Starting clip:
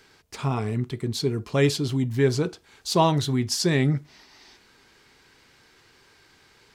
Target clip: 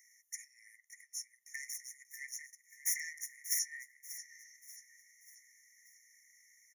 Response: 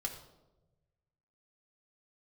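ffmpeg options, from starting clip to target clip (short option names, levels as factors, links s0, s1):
-filter_complex "[0:a]equalizer=f=2600:w=0.44:g=-7.5,acompressor=threshold=0.0224:ratio=5,asettb=1/sr,asplit=3[s0][s1][s2];[s0]atrim=end=1.544[s3];[s1]atrim=start=1.54:end=3.59,asetpts=PTS-STARTPTS,afade=t=in:d=0.004:c=qsin,afade=t=out:st=2.046:d=0.004:c=qsin,aeval=exprs='0.0562*(cos(1*acos(clip(val(0)/0.0562,-1,1)))-cos(1*PI/2))+0.00501*(cos(3*acos(clip(val(0)/0.0562,-1,1)))-cos(3*PI/2))+0.0251*(cos(6*acos(clip(val(0)/0.0562,-1,1)))-cos(6*PI/2))':c=same[s4];[s2]atrim=start=3.586[s5];[s3][s4]acrossfade=d=0.004:c1=hsin:c2=qsin[s6];[s6][s5]acrossfade=d=0.004:c1=qsin:c2=hsin,asuperstop=centerf=3200:order=12:qfactor=1.1,aecho=1:1:587|1174|1761|2348:0.211|0.0972|0.0447|0.0206,afftfilt=real='re*eq(mod(floor(b*sr/1024/1800),2),1)':imag='im*eq(mod(floor(b*sr/1024/1800),2),1)':win_size=1024:overlap=0.75,volume=2.24"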